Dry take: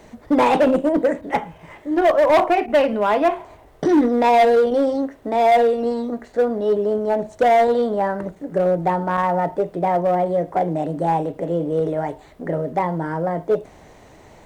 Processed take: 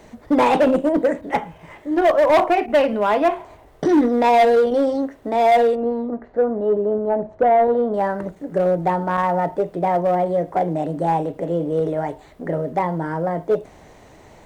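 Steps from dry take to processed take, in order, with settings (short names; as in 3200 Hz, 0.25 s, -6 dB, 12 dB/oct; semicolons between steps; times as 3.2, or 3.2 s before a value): 5.75–7.94 LPF 1400 Hz 12 dB/oct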